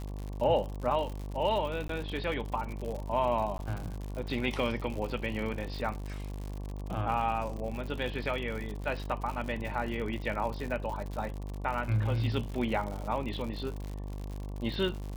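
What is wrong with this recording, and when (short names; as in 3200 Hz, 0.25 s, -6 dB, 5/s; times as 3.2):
buzz 50 Hz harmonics 23 -38 dBFS
crackle 100/s -36 dBFS
1.88–1.89 gap 13 ms
3.58–3.59 gap 11 ms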